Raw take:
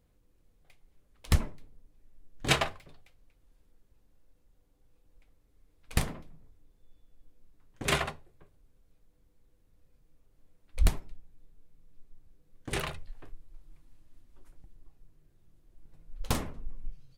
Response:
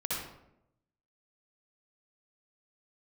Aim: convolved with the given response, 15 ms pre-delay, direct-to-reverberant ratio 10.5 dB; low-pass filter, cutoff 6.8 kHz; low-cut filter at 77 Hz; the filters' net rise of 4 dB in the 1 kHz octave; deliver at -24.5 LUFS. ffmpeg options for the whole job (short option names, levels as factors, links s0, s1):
-filter_complex "[0:a]highpass=77,lowpass=6800,equalizer=f=1000:t=o:g=5,asplit=2[s0][s1];[1:a]atrim=start_sample=2205,adelay=15[s2];[s1][s2]afir=irnorm=-1:irlink=0,volume=0.168[s3];[s0][s3]amix=inputs=2:normalize=0,volume=2.66"